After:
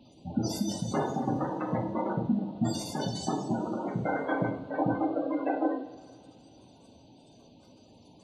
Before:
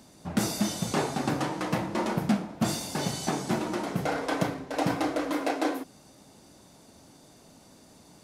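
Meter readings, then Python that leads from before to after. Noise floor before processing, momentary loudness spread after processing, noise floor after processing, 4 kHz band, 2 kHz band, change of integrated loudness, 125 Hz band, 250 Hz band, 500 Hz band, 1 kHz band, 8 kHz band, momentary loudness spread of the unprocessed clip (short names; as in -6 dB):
-55 dBFS, 4 LU, -57 dBFS, -6.5 dB, -5.5 dB, -1.5 dB, -1.0 dB, -0.5 dB, -1.0 dB, -1.5 dB, -7.0 dB, 3 LU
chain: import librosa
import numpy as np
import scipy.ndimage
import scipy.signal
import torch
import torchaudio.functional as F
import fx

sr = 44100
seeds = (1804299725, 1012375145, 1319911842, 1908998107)

y = fx.spec_gate(x, sr, threshold_db=-15, keep='strong')
y = fx.rev_double_slope(y, sr, seeds[0], early_s=0.55, late_s=2.8, knee_db=-18, drr_db=3.0)
y = fx.dmg_noise_band(y, sr, seeds[1], low_hz=2500.0, high_hz=4400.0, level_db=-69.0)
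y = F.gain(torch.from_numpy(y), -2.0).numpy()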